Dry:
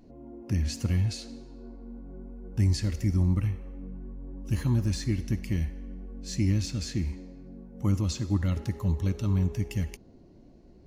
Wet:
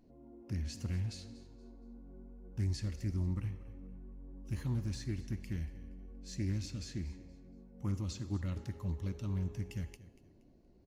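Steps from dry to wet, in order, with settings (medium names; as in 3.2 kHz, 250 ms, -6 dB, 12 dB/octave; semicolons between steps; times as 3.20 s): feedback comb 130 Hz, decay 1.2 s, harmonics all, mix 40%; on a send: feedback delay 236 ms, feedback 30%, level -17.5 dB; on the sum: loudspeaker Doppler distortion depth 0.23 ms; trim -6 dB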